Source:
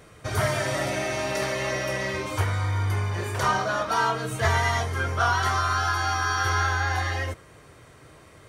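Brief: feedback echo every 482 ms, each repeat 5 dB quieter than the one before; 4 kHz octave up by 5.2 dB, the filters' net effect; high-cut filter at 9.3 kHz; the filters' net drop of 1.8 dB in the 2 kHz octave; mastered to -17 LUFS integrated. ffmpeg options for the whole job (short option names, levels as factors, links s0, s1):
-af "lowpass=9300,equalizer=f=2000:t=o:g=-4,equalizer=f=4000:t=o:g=8,aecho=1:1:482|964|1446|1928|2410|2892|3374:0.562|0.315|0.176|0.0988|0.0553|0.031|0.0173,volume=2.24"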